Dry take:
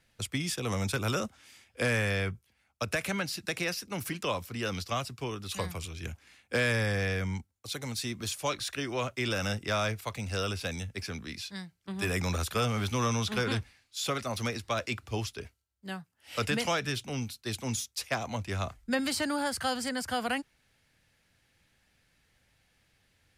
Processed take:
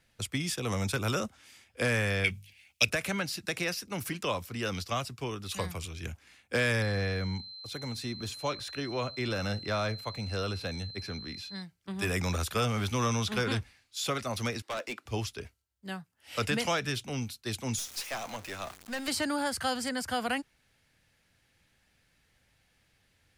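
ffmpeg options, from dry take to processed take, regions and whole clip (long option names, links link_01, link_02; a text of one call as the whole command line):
ffmpeg -i in.wav -filter_complex "[0:a]asettb=1/sr,asplit=3[link_01][link_02][link_03];[link_01]atrim=end=2.244[link_04];[link_02]atrim=start=2.24:end=2.9,asetpts=PTS-STARTPTS,afade=type=in:duration=0.004:curve=qsin,afade=type=out:start_time=0.656:duration=0.004:curve=qsin,highshelf=frequency=1800:width_type=q:width=3:gain=11,bandreject=frequency=50:width_type=h:width=6,bandreject=frequency=100:width_type=h:width=6,bandreject=frequency=150:width_type=h:width=6,bandreject=frequency=200:width_type=h:width=6[link_05];[link_03]atrim=start=2.896[link_06];[link_04][link_05]acrossfade=duration=0.004:curve1=hsin:curve2=qsin[link_07];[link_07][link_06]acrossfade=duration=0.004:curve1=qsin:curve2=hsin,asettb=1/sr,asplit=3[link_08][link_09][link_10];[link_08]atrim=end=6.824[link_11];[link_09]atrim=start=6.82:end=11.62,asetpts=PTS-STARTPTS,afade=type=in:duration=0.004:curve=qsin,afade=type=out:start_time=4.796:duration=0.004:curve=qsin,highshelf=frequency=2400:gain=-8.5,aeval=exprs='val(0)+0.00708*sin(2*PI*4100*n/s)':channel_layout=same,asplit=2[link_12][link_13];[link_13]adelay=70,lowpass=frequency=1300:poles=1,volume=-23.5dB,asplit=2[link_14][link_15];[link_15]adelay=70,lowpass=frequency=1300:poles=1,volume=0.25[link_16];[link_12][link_14][link_16]amix=inputs=3:normalize=0,atrim=end_sample=211680[link_17];[link_10]atrim=start=11.616[link_18];[link_11][link_17]acrossfade=duration=0.004:curve1=hsin:curve2=qsin[link_19];[link_19][link_18]acrossfade=duration=0.004:curve1=qsin:curve2=hsin,asettb=1/sr,asplit=3[link_20][link_21][link_22];[link_20]atrim=end=14.624[link_23];[link_21]atrim=start=14.62:end=15.06,asetpts=PTS-STARTPTS,afade=type=in:duration=0.004:curve=qsin,afade=type=out:start_time=0.436:duration=0.004:curve=qsin,highpass=frequency=250:width=0.5412,highpass=frequency=250:width=1.3066,highshelf=frequency=4200:gain=-5,asoftclip=type=hard:threshold=-31.5dB[link_24];[link_22]atrim=start=15.056[link_25];[link_23][link_24]acrossfade=duration=0.004:curve1=hsin:curve2=qsin[link_26];[link_26][link_25]acrossfade=duration=0.004:curve1=qsin:curve2=hsin,asettb=1/sr,asplit=3[link_27][link_28][link_29];[link_27]atrim=end=17.784[link_30];[link_28]atrim=start=17.78:end=19.08,asetpts=PTS-STARTPTS,afade=type=in:duration=0.004:curve=qsin,afade=type=out:start_time=1.296:duration=0.004:curve=qsin,aeval=exprs='val(0)+0.5*0.0133*sgn(val(0))':channel_layout=same,highpass=frequency=580:poles=1,aeval=exprs='(tanh(31.6*val(0)+0.35)-tanh(0.35))/31.6':channel_layout=same[link_31];[link_29]atrim=start=19.076[link_32];[link_30][link_31]acrossfade=duration=0.004:curve1=hsin:curve2=qsin[link_33];[link_33][link_32]acrossfade=duration=0.004:curve1=qsin:curve2=hsin" out.wav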